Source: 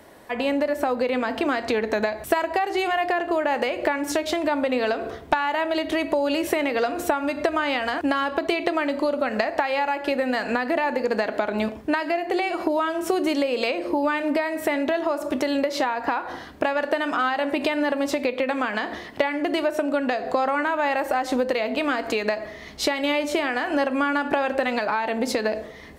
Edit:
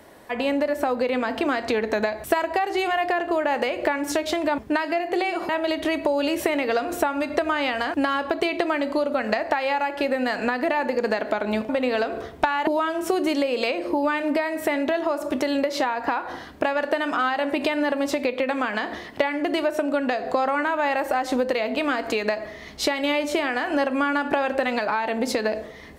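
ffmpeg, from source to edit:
-filter_complex "[0:a]asplit=5[a][b][c][d][e];[a]atrim=end=4.582[f];[b]atrim=start=11.758:end=12.672[g];[c]atrim=start=5.558:end=11.762[h];[d]atrim=start=4.578:end=5.562[i];[e]atrim=start=12.668[j];[f][g]acrossfade=d=0.004:c1=hsin:c2=hsin[k];[k][h]acrossfade=d=0.004:c1=hsin:c2=hsin[l];[l][i]acrossfade=d=0.004:c1=hsin:c2=hsin[m];[m][j]acrossfade=d=0.004:c1=hsin:c2=hsin"

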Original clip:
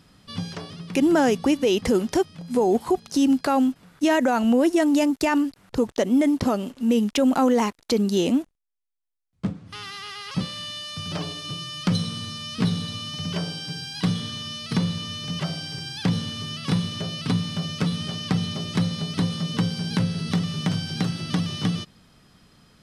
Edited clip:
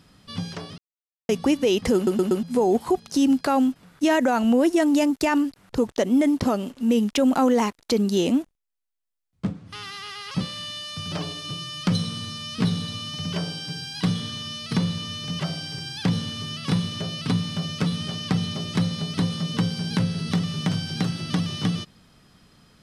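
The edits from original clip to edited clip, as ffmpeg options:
-filter_complex "[0:a]asplit=7[a][b][c][d][e][f][g];[a]atrim=end=0.78,asetpts=PTS-STARTPTS,afade=t=out:st=0.776:d=0.004:c=hsin[h];[b]atrim=start=0.78:end=1.29,asetpts=PTS-STARTPTS,volume=0[i];[c]atrim=start=1.29:end=2.072,asetpts=PTS-STARTPTS,afade=t=in:d=0.004:c=hsin[j];[d]atrim=start=1.948:end=2.072[k];[e]atrim=start=1.948:end=2.072[l];[f]atrim=start=1.948:end=2.072[m];[g]atrim=start=2.428[n];[h][i][j]concat=n=3:v=0:a=1[o];[o][k]acrossfade=d=0.004:c1=hsin:c2=hsin[p];[p][l]acrossfade=d=0.004:c1=hsin:c2=hsin[q];[q][m]acrossfade=d=0.004:c1=hsin:c2=hsin[r];[r][n]acrossfade=d=0.004:c1=hsin:c2=hsin"

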